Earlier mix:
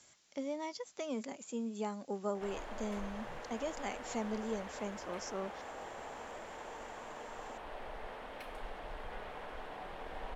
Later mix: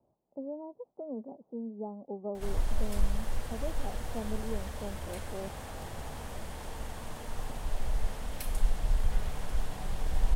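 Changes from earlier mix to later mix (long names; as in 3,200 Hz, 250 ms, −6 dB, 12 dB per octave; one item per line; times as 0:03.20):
speech: add Butterworth low-pass 830 Hz 36 dB per octave
background: remove three-way crossover with the lows and the highs turned down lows −22 dB, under 290 Hz, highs −23 dB, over 3,200 Hz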